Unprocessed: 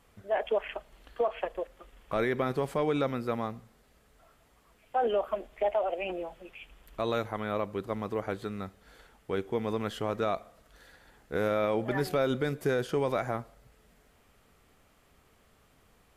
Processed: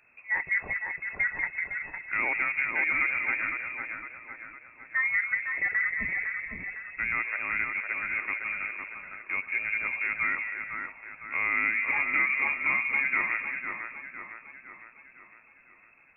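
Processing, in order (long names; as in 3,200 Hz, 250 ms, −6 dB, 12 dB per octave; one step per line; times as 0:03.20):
voice inversion scrambler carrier 2,600 Hz
echo with a time of its own for lows and highs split 1,900 Hz, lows 507 ms, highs 189 ms, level −4 dB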